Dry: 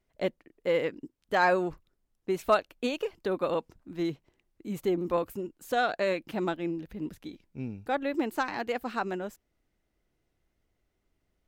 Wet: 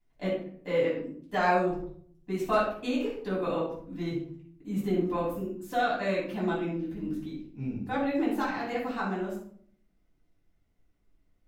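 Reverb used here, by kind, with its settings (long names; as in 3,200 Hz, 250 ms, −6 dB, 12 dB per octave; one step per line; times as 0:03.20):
rectangular room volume 720 cubic metres, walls furnished, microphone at 9.1 metres
level −11.5 dB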